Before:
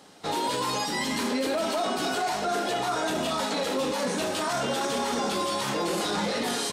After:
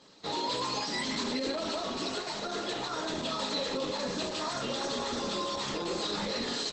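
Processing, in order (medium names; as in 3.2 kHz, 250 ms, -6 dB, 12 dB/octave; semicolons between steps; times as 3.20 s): peaking EQ 4.1 kHz +8.5 dB 0.45 oct; comb of notches 750 Hz; trim -4.5 dB; Opus 12 kbps 48 kHz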